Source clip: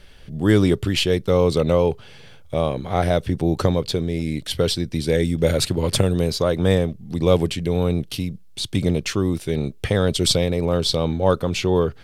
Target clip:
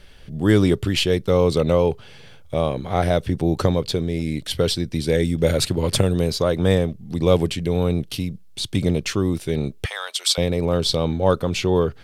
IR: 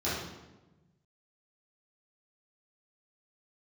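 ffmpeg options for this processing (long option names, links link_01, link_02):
-filter_complex "[0:a]asettb=1/sr,asplit=3[link_01][link_02][link_03];[link_01]atrim=end=9.864[link_04];[link_02]atrim=start=9.86:end=10.38,asetpts=PTS-STARTPTS,afade=type=in:duration=0.004:curve=qsin,afade=type=out:start_time=0.516:duration=0.004:curve=qsin,highpass=frequency=880:width=0.5412,highpass=frequency=880:width=1.3066[link_05];[link_03]atrim=start=10.376[link_06];[link_04][link_05]acrossfade=duration=0.004:curve1=hsin:curve2=qsin[link_07];[link_07][link_06]acrossfade=duration=0.004:curve1=qsin:curve2=hsin"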